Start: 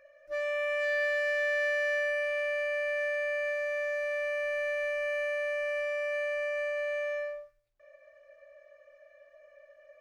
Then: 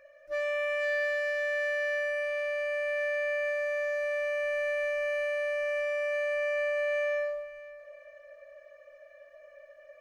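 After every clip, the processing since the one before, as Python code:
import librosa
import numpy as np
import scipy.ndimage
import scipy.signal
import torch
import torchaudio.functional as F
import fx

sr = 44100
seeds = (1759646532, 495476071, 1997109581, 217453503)

y = fx.rider(x, sr, range_db=4, speed_s=2.0)
y = fx.echo_feedback(y, sr, ms=526, feedback_pct=39, wet_db=-19.0)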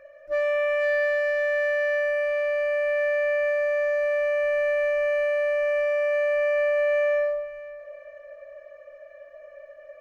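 y = fx.high_shelf(x, sr, hz=2200.0, db=-11.5)
y = F.gain(torch.from_numpy(y), 8.5).numpy()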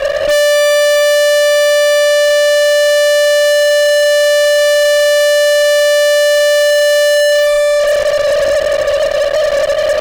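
y = scipy.signal.sosfilt(scipy.signal.butter(2, 1400.0, 'lowpass', fs=sr, output='sos'), x)
y = fx.fuzz(y, sr, gain_db=50.0, gate_db=-54.0)
y = F.gain(torch.from_numpy(y), 4.0).numpy()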